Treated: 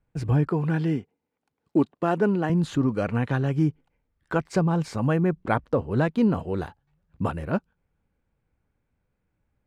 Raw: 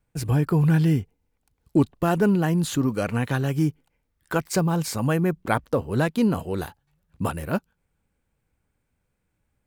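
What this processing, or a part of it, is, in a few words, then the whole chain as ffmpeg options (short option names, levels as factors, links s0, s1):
through cloth: -filter_complex "[0:a]asettb=1/sr,asplit=3[s0][s1][s2];[s0]atrim=end=0.484[s3];[s1]atrim=start=0.48:end=2.5,asetpts=PTS-STARTPTS,afade=t=in:d=0.004:c=qsin,afade=t=out:st=2.016:d=0.004:c=qsin,highpass=220[s4];[s2]atrim=start=2.496[s5];[s3][s4]acrossfade=d=0.004:c1=hsin:c2=qsin[s6];[s6][s5]acrossfade=d=0.004:c1=qsin:c2=hsin,lowpass=8300,highshelf=f=3700:g=-13.5"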